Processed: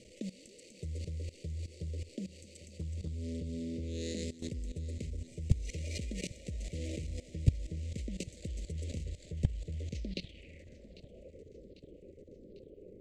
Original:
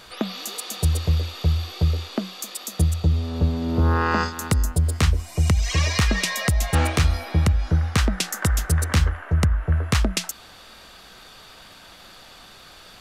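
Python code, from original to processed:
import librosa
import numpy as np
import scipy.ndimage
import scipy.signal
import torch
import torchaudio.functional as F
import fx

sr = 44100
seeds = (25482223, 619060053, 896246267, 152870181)

y = scipy.signal.medfilt(x, 25)
y = scipy.signal.sosfilt(scipy.signal.cheby1(4, 1.0, [570.0, 2000.0], 'bandstop', fs=sr, output='sos'), y)
y = fx.low_shelf(y, sr, hz=130.0, db=-5.5)
y = fx.level_steps(y, sr, step_db=19)
y = fx.filter_sweep_lowpass(y, sr, from_hz=7700.0, to_hz=430.0, start_s=9.85, end_s=11.41, q=3.7)
y = fx.echo_feedback(y, sr, ms=797, feedback_pct=58, wet_db=-17.5)
y = fx.upward_expand(y, sr, threshold_db=-35.0, expansion=1.5)
y = F.gain(torch.from_numpy(y), 5.0).numpy()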